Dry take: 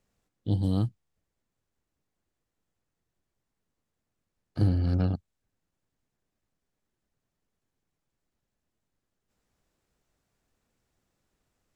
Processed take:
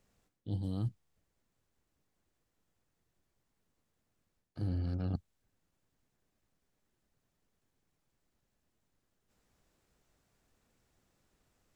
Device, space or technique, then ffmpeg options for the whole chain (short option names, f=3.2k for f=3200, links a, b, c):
compression on the reversed sound: -af "areverse,acompressor=threshold=-34dB:ratio=12,areverse,volume=2.5dB"